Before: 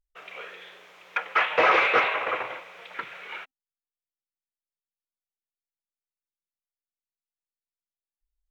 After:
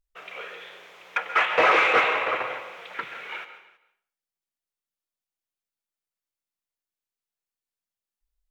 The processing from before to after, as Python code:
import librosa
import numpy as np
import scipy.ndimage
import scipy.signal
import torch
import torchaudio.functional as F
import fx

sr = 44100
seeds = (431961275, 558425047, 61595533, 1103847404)

p1 = 10.0 ** (-24.0 / 20.0) * np.tanh(x / 10.0 ** (-24.0 / 20.0))
p2 = x + (p1 * librosa.db_to_amplitude(-11.0))
p3 = p2 + 10.0 ** (-21.5 / 20.0) * np.pad(p2, (int(324 * sr / 1000.0), 0))[:len(p2)]
y = fx.rev_plate(p3, sr, seeds[0], rt60_s=0.51, hf_ratio=0.9, predelay_ms=120, drr_db=10.5)